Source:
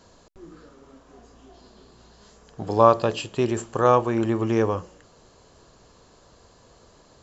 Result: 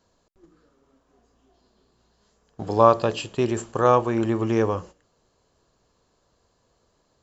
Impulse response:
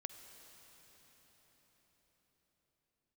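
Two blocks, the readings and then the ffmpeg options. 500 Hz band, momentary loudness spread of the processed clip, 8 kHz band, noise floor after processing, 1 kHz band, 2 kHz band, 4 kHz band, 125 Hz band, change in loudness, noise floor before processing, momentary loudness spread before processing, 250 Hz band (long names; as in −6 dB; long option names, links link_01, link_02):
0.0 dB, 10 LU, can't be measured, −68 dBFS, 0.0 dB, 0.0 dB, 0.0 dB, 0.0 dB, 0.0 dB, −55 dBFS, 10 LU, 0.0 dB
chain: -af "agate=range=-13dB:threshold=-40dB:ratio=16:detection=peak"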